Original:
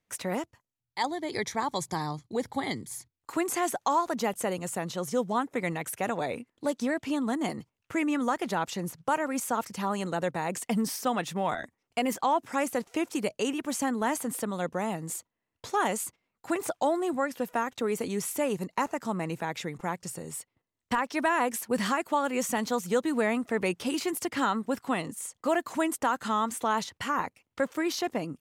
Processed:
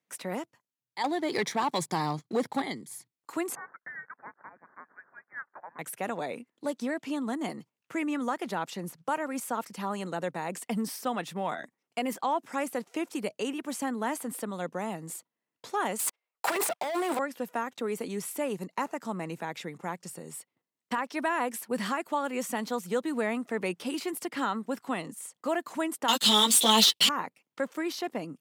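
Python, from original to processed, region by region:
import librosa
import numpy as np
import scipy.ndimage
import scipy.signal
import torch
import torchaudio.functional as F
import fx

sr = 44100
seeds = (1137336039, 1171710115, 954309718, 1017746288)

y = fx.chain(x, sr, fx.high_shelf(hz=11000.0, db=-6.0),
    fx.leveller(passes=2), at=(1.04, 2.62))
y = fx.chain(y, sr, fx.median_filter(points=15),
    fx.cheby1_highpass(hz=1300.0, order=4),
    fx.freq_invert(carrier_hz=2900), at=(3.55, 5.79))
y = fx.chain(y, sr, fx.highpass(hz=460.0, slope=24),
    fx.leveller(passes=5),
    fx.over_compress(threshold_db=-26.0, ratio=-1.0), at=(15.99, 17.19))
y = fx.chain(y, sr, fx.high_shelf_res(hz=2300.0, db=14.0, q=3.0),
    fx.leveller(passes=3),
    fx.ensemble(), at=(26.08, 27.09))
y = scipy.signal.sosfilt(scipy.signal.butter(4, 150.0, 'highpass', fs=sr, output='sos'), y)
y = fx.dynamic_eq(y, sr, hz=6500.0, q=3.3, threshold_db=-52.0, ratio=4.0, max_db=-5)
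y = y * librosa.db_to_amplitude(-3.0)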